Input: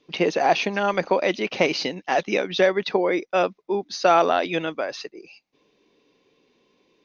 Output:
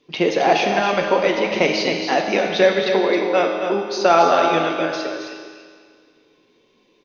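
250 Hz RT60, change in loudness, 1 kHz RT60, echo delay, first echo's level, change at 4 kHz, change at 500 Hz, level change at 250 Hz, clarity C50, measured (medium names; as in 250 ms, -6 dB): 1.9 s, +4.5 dB, 1.9 s, 268 ms, -7.0 dB, +4.5 dB, +4.5 dB, +5.0 dB, 2.0 dB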